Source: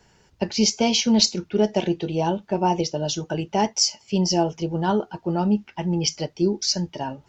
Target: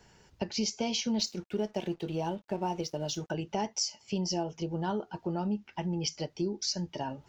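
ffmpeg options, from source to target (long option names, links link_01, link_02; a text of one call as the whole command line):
ffmpeg -i in.wav -filter_complex "[0:a]acompressor=threshold=-31dB:ratio=2.5,asettb=1/sr,asplit=3[link_01][link_02][link_03];[link_01]atrim=end=1.204[link_04];[link_02]atrim=start=1.2:end=3.31,asetpts=PTS-STARTPTS,afade=type=in:duration=0.004:curve=qsin,afade=type=out:start_time=2.106:duration=0.004:curve=qsin,aeval=exprs='sgn(val(0))*max(abs(val(0))-0.002,0)':channel_layout=same[link_05];[link_03]atrim=start=3.306[link_06];[link_04][link_05]acrossfade=duration=0.004:curve1=hsin:curve2=qsin[link_07];[link_07][link_06]acrossfade=duration=0.004:curve1=qsin:curve2=hsin,volume=-2dB" out.wav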